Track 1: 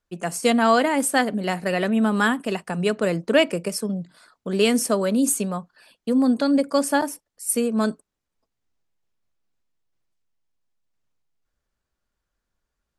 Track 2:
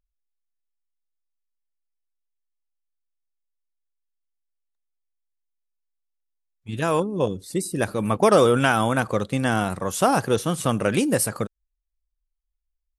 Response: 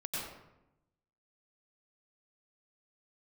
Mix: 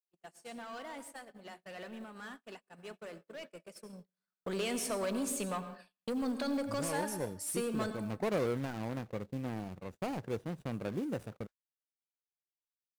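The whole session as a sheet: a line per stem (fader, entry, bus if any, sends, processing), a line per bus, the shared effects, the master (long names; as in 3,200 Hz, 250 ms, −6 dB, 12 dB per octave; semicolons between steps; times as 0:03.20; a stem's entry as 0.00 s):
0:03.86 −23.5 dB → 0:04.41 −13 dB, 0.00 s, send −9.5 dB, downward compressor 3 to 1, threshold −24 dBFS, peak gain reduction 9.5 dB; brickwall limiter −17.5 dBFS, peak gain reduction 5 dB; mid-hump overdrive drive 18 dB, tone 6,700 Hz, clips at −16 dBFS
−14.0 dB, 0.00 s, no send, running median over 41 samples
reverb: on, RT60 0.90 s, pre-delay 86 ms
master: noise gate −46 dBFS, range −40 dB; floating-point word with a short mantissa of 4 bits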